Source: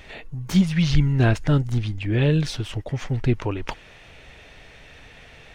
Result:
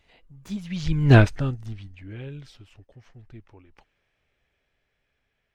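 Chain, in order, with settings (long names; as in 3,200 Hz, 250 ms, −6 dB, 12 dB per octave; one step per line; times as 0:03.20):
source passing by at 0:01.15, 27 m/s, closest 1.7 metres
level +6 dB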